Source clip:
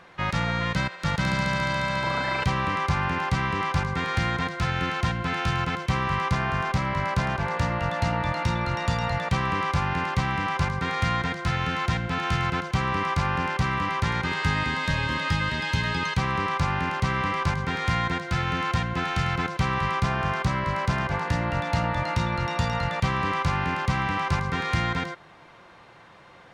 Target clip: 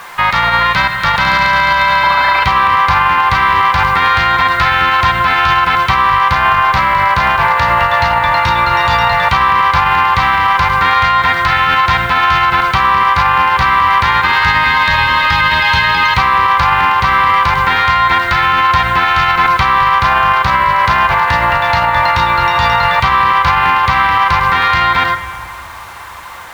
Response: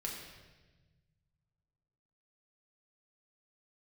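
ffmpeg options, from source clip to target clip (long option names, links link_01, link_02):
-filter_complex "[0:a]equalizer=frequency=125:width_type=o:width=1:gain=-7,equalizer=frequency=250:width_type=o:width=1:gain=-8,equalizer=frequency=500:width_type=o:width=1:gain=-4,equalizer=frequency=1000:width_type=o:width=1:gain=11,equalizer=frequency=2000:width_type=o:width=1:gain=5,equalizer=frequency=4000:width_type=o:width=1:gain=7,equalizer=frequency=8000:width_type=o:width=1:gain=-7,acrusher=bits=7:mix=0:aa=0.000001,asplit=2[link_01][link_02];[1:a]atrim=start_sample=2205,asetrate=28224,aresample=44100,lowpass=5000[link_03];[link_02][link_03]afir=irnorm=-1:irlink=0,volume=-11.5dB[link_04];[link_01][link_04]amix=inputs=2:normalize=0,alimiter=level_in=11.5dB:limit=-1dB:release=50:level=0:latency=1,volume=-1dB"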